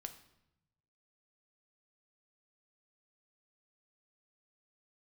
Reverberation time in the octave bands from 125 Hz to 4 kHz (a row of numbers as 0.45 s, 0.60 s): 1.6 s, 1.2 s, 0.85 s, 0.80 s, 0.75 s, 0.70 s